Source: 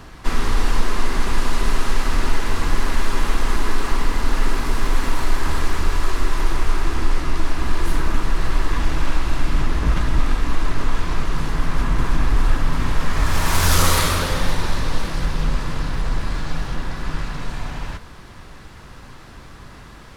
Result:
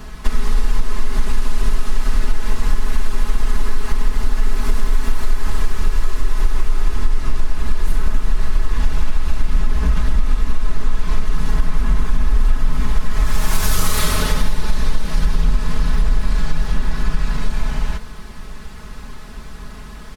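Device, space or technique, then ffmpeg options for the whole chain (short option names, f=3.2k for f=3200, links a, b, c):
ASMR close-microphone chain: -af "lowshelf=f=150:g=7,acompressor=threshold=-13dB:ratio=6,highshelf=f=7.2k:g=6,aecho=1:1:4.7:0.8"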